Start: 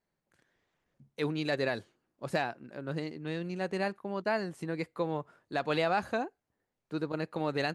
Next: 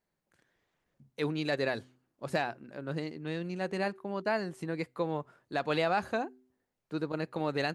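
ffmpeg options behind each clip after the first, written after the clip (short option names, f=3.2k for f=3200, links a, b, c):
-af "bandreject=f=127.6:t=h:w=4,bandreject=f=255.2:t=h:w=4,bandreject=f=382.8:t=h:w=4"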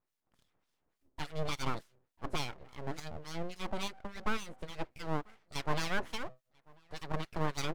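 -filter_complex "[0:a]acrossover=split=1100[a][b];[a]aeval=exprs='val(0)*(1-1/2+1/2*cos(2*PI*3.5*n/s))':c=same[c];[b]aeval=exprs='val(0)*(1-1/2-1/2*cos(2*PI*3.5*n/s))':c=same[d];[c][d]amix=inputs=2:normalize=0,asplit=2[e][f];[f]adelay=991.3,volume=-27dB,highshelf=f=4k:g=-22.3[g];[e][g]amix=inputs=2:normalize=0,aeval=exprs='abs(val(0))':c=same,volume=3.5dB"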